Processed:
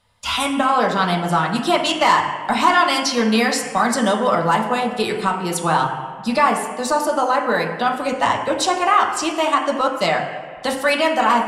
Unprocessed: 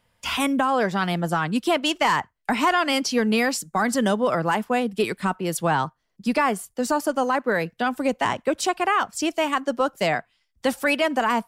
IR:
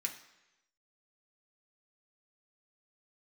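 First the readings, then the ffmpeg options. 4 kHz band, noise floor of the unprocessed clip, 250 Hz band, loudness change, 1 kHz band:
+5.5 dB, −71 dBFS, +2.0 dB, +4.5 dB, +6.5 dB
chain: -filter_complex "[1:a]atrim=start_sample=2205,asetrate=22050,aresample=44100[link_01];[0:a][link_01]afir=irnorm=-1:irlink=0"

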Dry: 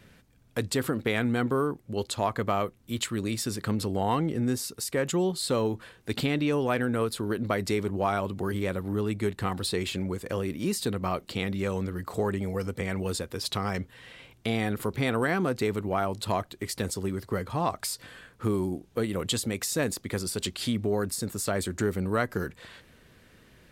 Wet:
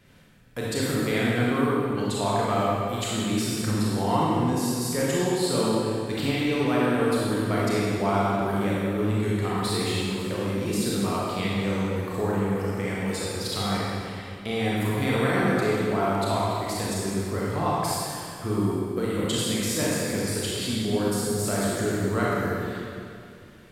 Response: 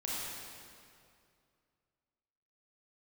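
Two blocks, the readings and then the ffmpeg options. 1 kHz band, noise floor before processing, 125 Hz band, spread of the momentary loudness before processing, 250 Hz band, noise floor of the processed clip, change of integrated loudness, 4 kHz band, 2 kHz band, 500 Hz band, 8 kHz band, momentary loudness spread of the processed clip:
+4.5 dB, −59 dBFS, +4.0 dB, 6 LU, +4.5 dB, −41 dBFS, +4.0 dB, +3.5 dB, +3.5 dB, +3.5 dB, +3.0 dB, 5 LU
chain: -filter_complex "[1:a]atrim=start_sample=2205[link_01];[0:a][link_01]afir=irnorm=-1:irlink=0"

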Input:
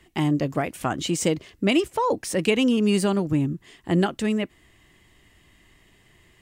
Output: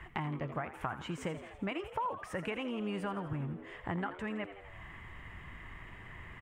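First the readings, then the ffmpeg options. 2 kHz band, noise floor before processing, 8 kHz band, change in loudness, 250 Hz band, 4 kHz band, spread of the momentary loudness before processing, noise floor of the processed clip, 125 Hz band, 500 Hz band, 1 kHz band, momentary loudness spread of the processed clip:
−10.0 dB, −59 dBFS, −25.0 dB, −16.0 dB, −17.0 dB, −18.0 dB, 7 LU, −51 dBFS, −12.5 dB, −16.0 dB, −9.0 dB, 12 LU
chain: -filter_complex "[0:a]firequalizer=gain_entry='entry(110,0);entry(250,-13);entry(960,3);entry(1600,2);entry(4200,-21)':delay=0.05:min_phase=1,acompressor=threshold=-49dB:ratio=4,asplit=8[link_01][link_02][link_03][link_04][link_05][link_06][link_07][link_08];[link_02]adelay=83,afreqshift=90,volume=-12.5dB[link_09];[link_03]adelay=166,afreqshift=180,volume=-16.5dB[link_10];[link_04]adelay=249,afreqshift=270,volume=-20.5dB[link_11];[link_05]adelay=332,afreqshift=360,volume=-24.5dB[link_12];[link_06]adelay=415,afreqshift=450,volume=-28.6dB[link_13];[link_07]adelay=498,afreqshift=540,volume=-32.6dB[link_14];[link_08]adelay=581,afreqshift=630,volume=-36.6dB[link_15];[link_01][link_09][link_10][link_11][link_12][link_13][link_14][link_15]amix=inputs=8:normalize=0,volume=10dB"

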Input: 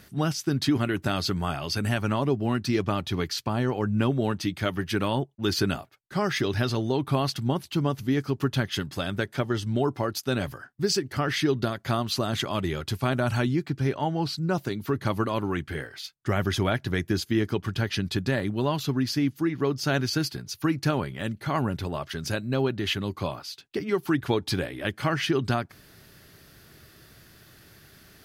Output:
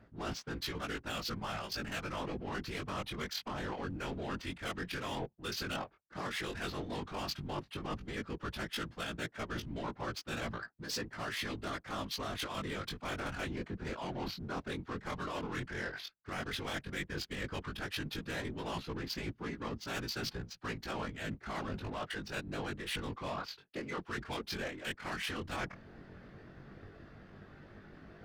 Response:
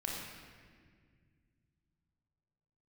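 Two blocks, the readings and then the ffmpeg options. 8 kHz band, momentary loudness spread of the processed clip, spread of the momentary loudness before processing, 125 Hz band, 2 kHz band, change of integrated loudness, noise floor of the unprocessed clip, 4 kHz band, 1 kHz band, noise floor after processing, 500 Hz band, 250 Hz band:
−10.5 dB, 5 LU, 5 LU, −16.5 dB, −7.5 dB, −12.5 dB, −55 dBFS, −9.0 dB, −9.5 dB, −62 dBFS, −13.5 dB, −15.0 dB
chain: -filter_complex "[0:a]acrossover=split=200[link_01][link_02];[link_02]adynamicsmooth=sensitivity=4.5:basefreq=760[link_03];[link_01][link_03]amix=inputs=2:normalize=0,afftfilt=real='hypot(re,im)*cos(2*PI*random(0))':imag='hypot(re,im)*sin(2*PI*random(1))':win_size=512:overlap=0.75,tiltshelf=frequency=830:gain=-5.5,flanger=delay=17.5:depth=5.1:speed=0.1,afftfilt=real='re*lt(hypot(re,im),0.1)':imag='im*lt(hypot(re,im),0.1)':win_size=1024:overlap=0.75,areverse,acompressor=threshold=-53dB:ratio=8,areverse,volume=16dB"

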